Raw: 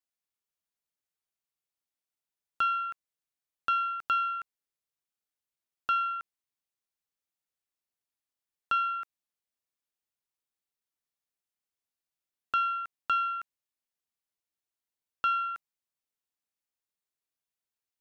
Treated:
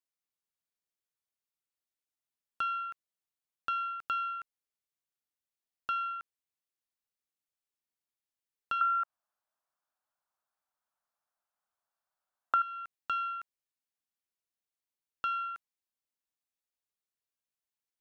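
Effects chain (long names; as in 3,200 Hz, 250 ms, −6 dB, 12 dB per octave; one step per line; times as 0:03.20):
0:08.81–0:12.62: flat-topped bell 960 Hz +15 dB
downward compressor 3 to 1, threshold −25 dBFS, peak gain reduction 11 dB
level −4 dB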